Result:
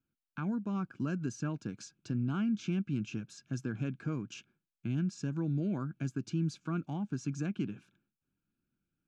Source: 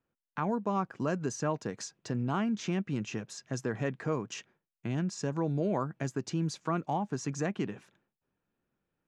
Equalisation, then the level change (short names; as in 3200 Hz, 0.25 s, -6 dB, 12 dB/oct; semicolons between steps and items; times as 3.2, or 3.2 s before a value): Butterworth band-stop 1900 Hz, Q 3.6; band shelf 680 Hz -14 dB; high shelf 3200 Hz -10 dB; 0.0 dB